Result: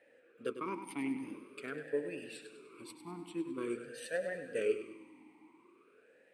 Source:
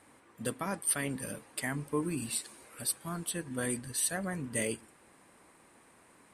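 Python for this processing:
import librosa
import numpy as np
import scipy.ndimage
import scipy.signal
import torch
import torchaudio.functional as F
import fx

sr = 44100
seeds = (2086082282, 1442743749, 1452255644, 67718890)

p1 = fx.cheby_harmonics(x, sr, harmonics=(3,), levels_db=(-14,), full_scale_db=-16.0)
p2 = fx.wow_flutter(p1, sr, seeds[0], rate_hz=2.1, depth_cents=64.0)
p3 = p2 + fx.echo_feedback(p2, sr, ms=100, feedback_pct=46, wet_db=-10.0, dry=0)
p4 = fx.rev_freeverb(p3, sr, rt60_s=2.7, hf_ratio=1.0, predelay_ms=100, drr_db=16.0)
p5 = fx.vowel_sweep(p4, sr, vowels='e-u', hz=0.47)
y = F.gain(torch.from_numpy(p5), 15.0).numpy()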